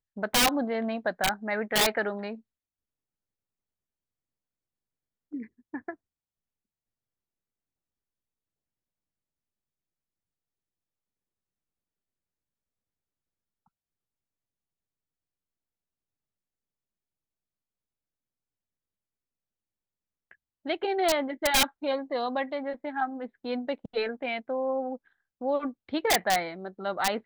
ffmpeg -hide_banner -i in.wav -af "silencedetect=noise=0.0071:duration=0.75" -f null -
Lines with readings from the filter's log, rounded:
silence_start: 2.38
silence_end: 5.33 | silence_duration: 2.95
silence_start: 5.94
silence_end: 20.31 | silence_duration: 14.37